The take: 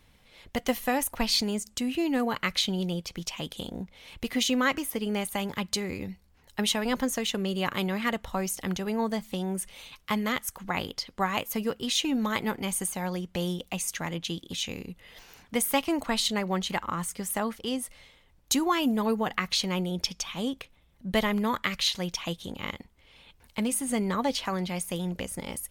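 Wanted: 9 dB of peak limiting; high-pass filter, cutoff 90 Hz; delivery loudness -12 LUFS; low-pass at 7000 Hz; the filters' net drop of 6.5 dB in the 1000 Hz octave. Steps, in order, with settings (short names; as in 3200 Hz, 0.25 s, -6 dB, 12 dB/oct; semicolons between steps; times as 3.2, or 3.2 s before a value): HPF 90 Hz; LPF 7000 Hz; bell 1000 Hz -8.5 dB; gain +20.5 dB; limiter -0.5 dBFS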